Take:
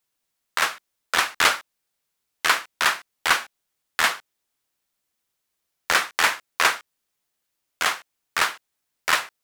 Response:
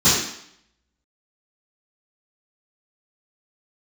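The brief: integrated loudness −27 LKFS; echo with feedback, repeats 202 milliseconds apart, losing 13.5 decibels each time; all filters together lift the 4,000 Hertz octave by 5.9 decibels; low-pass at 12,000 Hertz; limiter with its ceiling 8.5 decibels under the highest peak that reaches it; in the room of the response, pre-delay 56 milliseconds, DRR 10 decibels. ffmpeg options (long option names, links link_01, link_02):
-filter_complex "[0:a]lowpass=12000,equalizer=frequency=4000:width_type=o:gain=7.5,alimiter=limit=-9.5dB:level=0:latency=1,aecho=1:1:202|404:0.211|0.0444,asplit=2[link_01][link_02];[1:a]atrim=start_sample=2205,adelay=56[link_03];[link_02][link_03]afir=irnorm=-1:irlink=0,volume=-30.5dB[link_04];[link_01][link_04]amix=inputs=2:normalize=0,volume=-2.5dB"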